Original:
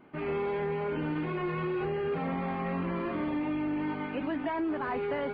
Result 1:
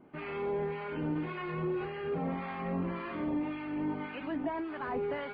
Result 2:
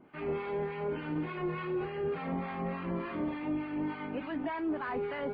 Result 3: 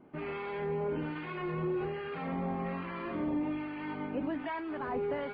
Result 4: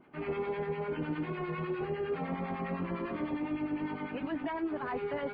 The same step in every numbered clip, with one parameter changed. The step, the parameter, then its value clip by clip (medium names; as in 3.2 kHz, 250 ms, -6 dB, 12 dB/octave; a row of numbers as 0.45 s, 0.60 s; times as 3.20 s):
harmonic tremolo, rate: 1.8 Hz, 3.4 Hz, 1.2 Hz, 9.9 Hz